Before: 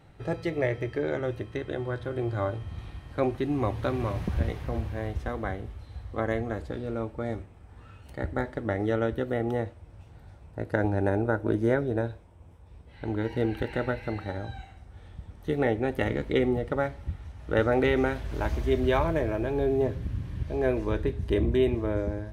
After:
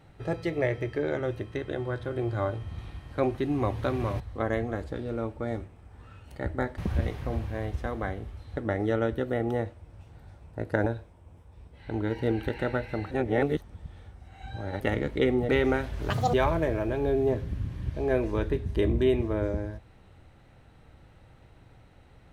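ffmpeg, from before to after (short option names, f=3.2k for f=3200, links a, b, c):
-filter_complex "[0:a]asplit=10[a][b][c][d][e][f][g][h][i][j];[a]atrim=end=4.202[k];[b]atrim=start=5.978:end=8.562[l];[c]atrim=start=4.198:end=5.982[m];[d]atrim=start=8.558:end=10.862[n];[e]atrim=start=11.998:end=14.252[o];[f]atrim=start=14.248:end=15.942,asetpts=PTS-STARTPTS,areverse[p];[g]atrim=start=15.938:end=16.632[q];[h]atrim=start=17.808:end=18.424[r];[i]atrim=start=18.42:end=18.87,asetpts=PTS-STARTPTS,asetrate=84231,aresample=44100,atrim=end_sample=10390,asetpts=PTS-STARTPTS[s];[j]atrim=start=18.866[t];[k][l]acrossfade=d=0.004:c1=hsin:c2=hsin[u];[u][m]acrossfade=d=0.004:c1=hsin:c2=hsin[v];[v][n]acrossfade=d=0.004:c1=hsin:c2=hsin[w];[w][o]acrossfade=d=0.004:c1=hsin:c2=hsin[x];[x][p]acrossfade=d=0.004:c1=hsin:c2=hsin[y];[y][q]acrossfade=d=0.004:c1=hsin:c2=hsin[z];[z][r]acrossfade=d=0.004:c1=hsin:c2=hsin[aa];[aa][s]acrossfade=d=0.004:c1=hsin:c2=hsin[ab];[ab][t]acrossfade=d=0.004:c1=hsin:c2=hsin"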